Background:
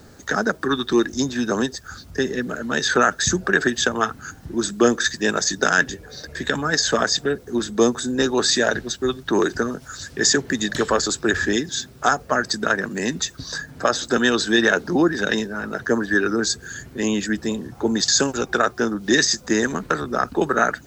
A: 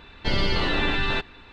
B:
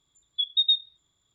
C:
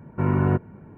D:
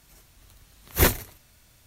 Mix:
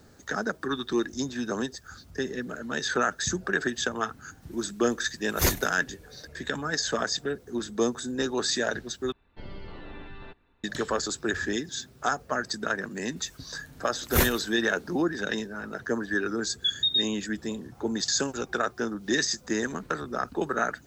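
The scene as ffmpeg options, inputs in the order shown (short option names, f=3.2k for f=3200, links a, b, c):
-filter_complex "[4:a]asplit=2[a][b];[0:a]volume=-8.5dB[c];[1:a]lowpass=f=1.1k:p=1[d];[2:a]alimiter=level_in=22dB:limit=-1dB:release=50:level=0:latency=1[e];[c]asplit=2[f][g];[f]atrim=end=9.124[h];[d]atrim=end=1.52,asetpts=PTS-STARTPTS,volume=-17dB[i];[g]atrim=start=10.636[j];[a]atrim=end=1.86,asetpts=PTS-STARTPTS,volume=-5dB,afade=t=in:d=0.004:c=hsin,afade=t=out:st=1.856:d=0.004:c=hsin,adelay=4420[k];[b]atrim=end=1.86,asetpts=PTS-STARTPTS,volume=-3.5dB,afade=t=in:d=0.004:c=hsin,afade=t=out:st=1.856:d=0.004:c=hsin,adelay=580356S[l];[e]atrim=end=1.34,asetpts=PTS-STARTPTS,volume=-17.5dB,afade=t=in:d=0.004:c=hsin,afade=t=out:st=1.336:d=0.004:c=hsin,adelay=16260[m];[h][i]acrossfade=d=0.004:c1=hsin:c2=hsin[n];[n][j]acrossfade=d=0.004:c1=hsin:c2=hsin[o];[o][k][l][m]amix=inputs=4:normalize=0"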